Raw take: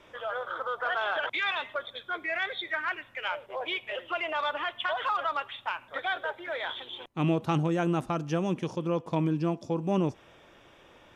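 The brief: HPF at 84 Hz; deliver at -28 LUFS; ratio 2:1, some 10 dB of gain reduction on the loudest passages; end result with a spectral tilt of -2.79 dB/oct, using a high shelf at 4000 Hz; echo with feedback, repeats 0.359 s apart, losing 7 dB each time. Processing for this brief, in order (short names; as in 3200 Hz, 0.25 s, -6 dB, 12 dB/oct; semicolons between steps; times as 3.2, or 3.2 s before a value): HPF 84 Hz; high shelf 4000 Hz +7 dB; compressor 2:1, threshold -41 dBFS; feedback echo 0.359 s, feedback 45%, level -7 dB; gain +9.5 dB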